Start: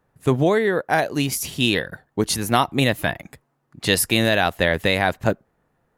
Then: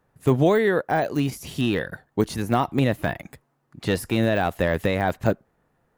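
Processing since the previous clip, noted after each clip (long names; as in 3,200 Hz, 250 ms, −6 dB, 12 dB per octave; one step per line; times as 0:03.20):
de-essing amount 85%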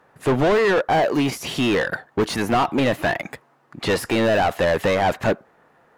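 mid-hump overdrive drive 28 dB, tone 2,300 Hz, clips at −5 dBFS
level −5 dB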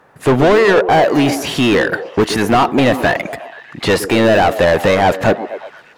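echo through a band-pass that steps 122 ms, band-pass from 330 Hz, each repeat 0.7 octaves, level −8.5 dB
level +7 dB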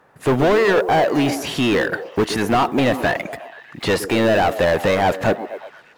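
one scale factor per block 7 bits
level −5 dB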